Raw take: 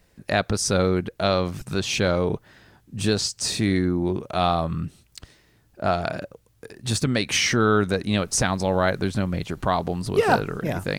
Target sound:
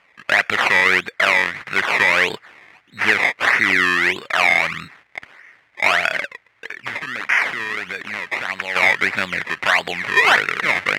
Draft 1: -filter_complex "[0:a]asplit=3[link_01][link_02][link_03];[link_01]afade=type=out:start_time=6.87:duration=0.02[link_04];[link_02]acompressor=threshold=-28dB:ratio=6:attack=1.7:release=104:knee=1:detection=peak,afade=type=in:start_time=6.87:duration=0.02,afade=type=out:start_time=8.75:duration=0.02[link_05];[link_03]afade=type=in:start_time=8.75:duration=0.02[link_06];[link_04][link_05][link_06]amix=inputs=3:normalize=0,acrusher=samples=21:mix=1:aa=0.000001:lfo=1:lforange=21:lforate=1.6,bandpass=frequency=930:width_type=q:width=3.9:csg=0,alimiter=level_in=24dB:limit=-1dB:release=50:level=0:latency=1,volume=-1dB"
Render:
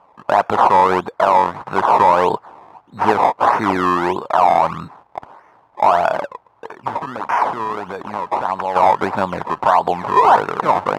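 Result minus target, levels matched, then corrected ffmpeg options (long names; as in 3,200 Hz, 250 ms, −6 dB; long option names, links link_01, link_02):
2,000 Hz band −12.5 dB
-filter_complex "[0:a]asplit=3[link_01][link_02][link_03];[link_01]afade=type=out:start_time=6.87:duration=0.02[link_04];[link_02]acompressor=threshold=-28dB:ratio=6:attack=1.7:release=104:knee=1:detection=peak,afade=type=in:start_time=6.87:duration=0.02,afade=type=out:start_time=8.75:duration=0.02[link_05];[link_03]afade=type=in:start_time=8.75:duration=0.02[link_06];[link_04][link_05][link_06]amix=inputs=3:normalize=0,acrusher=samples=21:mix=1:aa=0.000001:lfo=1:lforange=21:lforate=1.6,bandpass=frequency=2000:width_type=q:width=3.9:csg=0,alimiter=level_in=24dB:limit=-1dB:release=50:level=0:latency=1,volume=-1dB"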